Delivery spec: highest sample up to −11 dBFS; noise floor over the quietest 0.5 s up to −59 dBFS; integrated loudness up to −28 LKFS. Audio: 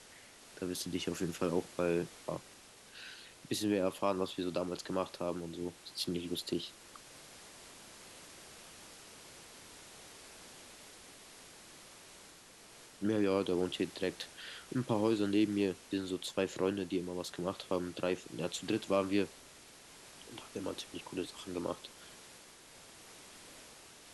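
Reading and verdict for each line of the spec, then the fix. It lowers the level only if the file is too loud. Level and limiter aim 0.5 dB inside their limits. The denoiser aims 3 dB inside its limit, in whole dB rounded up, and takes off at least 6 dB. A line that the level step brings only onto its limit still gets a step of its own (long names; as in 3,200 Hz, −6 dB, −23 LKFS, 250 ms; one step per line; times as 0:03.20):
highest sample −19.0 dBFS: in spec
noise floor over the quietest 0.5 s −57 dBFS: out of spec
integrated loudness −36.5 LKFS: in spec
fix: broadband denoise 6 dB, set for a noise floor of −57 dBFS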